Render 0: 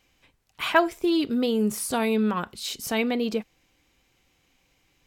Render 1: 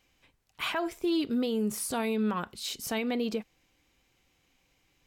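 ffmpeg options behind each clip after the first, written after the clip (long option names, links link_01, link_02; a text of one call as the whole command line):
ffmpeg -i in.wav -af "alimiter=limit=-18dB:level=0:latency=1:release=85,volume=-3.5dB" out.wav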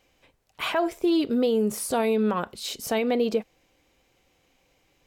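ffmpeg -i in.wav -af "equalizer=frequency=550:width_type=o:width=1.2:gain=8,volume=2.5dB" out.wav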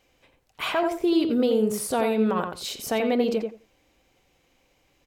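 ffmpeg -i in.wav -filter_complex "[0:a]asplit=2[link_01][link_02];[link_02]adelay=87,lowpass=frequency=2100:poles=1,volume=-5dB,asplit=2[link_03][link_04];[link_04]adelay=87,lowpass=frequency=2100:poles=1,volume=0.17,asplit=2[link_05][link_06];[link_06]adelay=87,lowpass=frequency=2100:poles=1,volume=0.17[link_07];[link_01][link_03][link_05][link_07]amix=inputs=4:normalize=0" out.wav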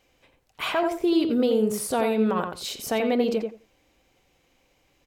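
ffmpeg -i in.wav -af anull out.wav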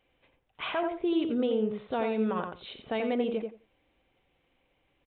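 ffmpeg -i in.wav -af "aresample=8000,aresample=44100,volume=-6dB" out.wav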